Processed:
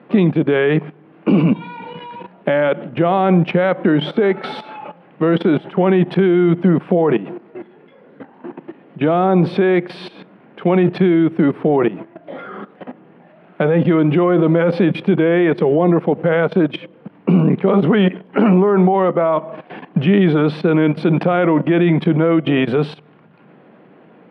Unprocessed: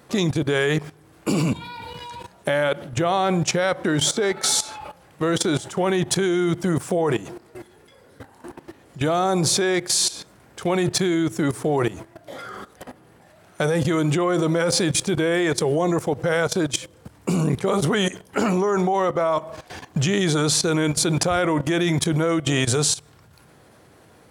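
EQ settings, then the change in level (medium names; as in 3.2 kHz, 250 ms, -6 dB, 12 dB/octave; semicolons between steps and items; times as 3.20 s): elliptic band-pass 180–2800 Hz, stop band 40 dB; bass shelf 410 Hz +10.5 dB; +2.5 dB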